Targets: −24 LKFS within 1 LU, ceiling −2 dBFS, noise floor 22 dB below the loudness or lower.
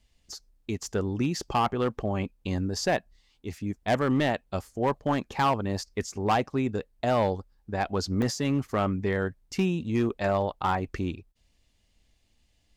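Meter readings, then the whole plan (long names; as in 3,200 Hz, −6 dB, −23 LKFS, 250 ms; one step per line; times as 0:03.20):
share of clipped samples 1.0%; peaks flattened at −18.0 dBFS; number of dropouts 1; longest dropout 1.2 ms; integrated loudness −28.5 LKFS; sample peak −18.0 dBFS; target loudness −24.0 LKFS
→ clipped peaks rebuilt −18 dBFS
repair the gap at 0:08.22, 1.2 ms
level +4.5 dB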